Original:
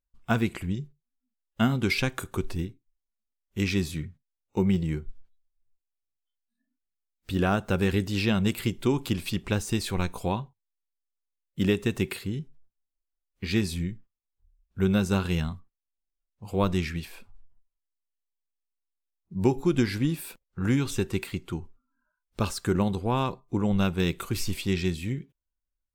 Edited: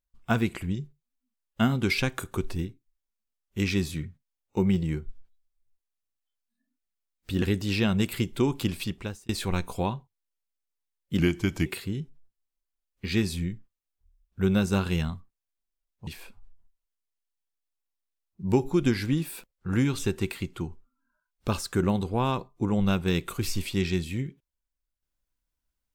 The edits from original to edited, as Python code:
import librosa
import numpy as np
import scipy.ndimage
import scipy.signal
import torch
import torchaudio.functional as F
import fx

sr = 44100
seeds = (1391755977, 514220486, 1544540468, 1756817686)

y = fx.edit(x, sr, fx.cut(start_s=7.42, length_s=0.46),
    fx.fade_out_span(start_s=9.22, length_s=0.53),
    fx.speed_span(start_s=11.65, length_s=0.4, speed=0.85),
    fx.cut(start_s=16.46, length_s=0.53), tone=tone)